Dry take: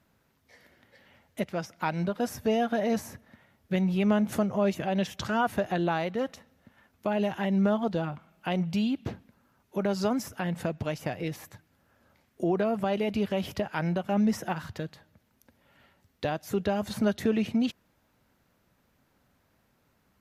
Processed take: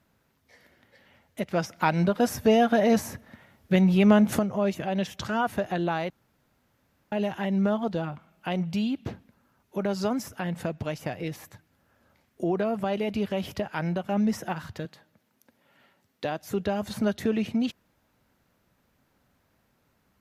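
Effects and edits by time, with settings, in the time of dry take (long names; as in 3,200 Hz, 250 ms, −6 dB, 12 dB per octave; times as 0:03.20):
0:01.51–0:04.39: clip gain +6 dB
0:06.10–0:07.12: fill with room tone
0:14.85–0:16.39: high-pass filter 160 Hz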